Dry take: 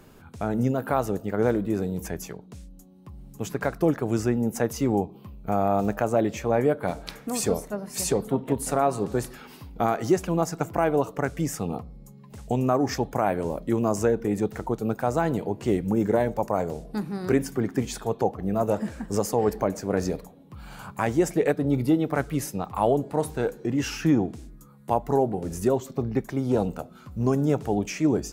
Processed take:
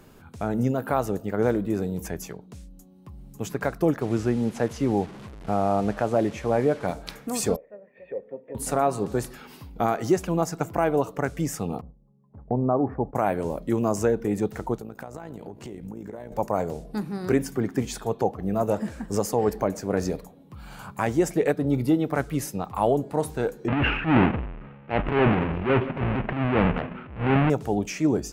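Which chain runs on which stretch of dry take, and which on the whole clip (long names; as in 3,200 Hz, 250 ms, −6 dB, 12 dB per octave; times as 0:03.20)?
0:04.01–0:06.87: linear delta modulator 64 kbit/s, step −35.5 dBFS + low-pass filter 3,200 Hz 6 dB per octave
0:07.56–0:08.55: formant resonators in series e + low-shelf EQ 140 Hz −10.5 dB
0:11.81–0:13.15: low-pass filter 1,100 Hz 24 dB per octave + noise gate −42 dBFS, range −14 dB
0:14.78–0:16.32: downward compressor 16 to 1, threshold −30 dBFS + amplitude modulation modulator 57 Hz, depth 45%
0:23.68–0:27.50: each half-wave held at its own peak + elliptic low-pass filter 2,700 Hz, stop band 70 dB + transient designer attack −11 dB, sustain +9 dB
whole clip: no processing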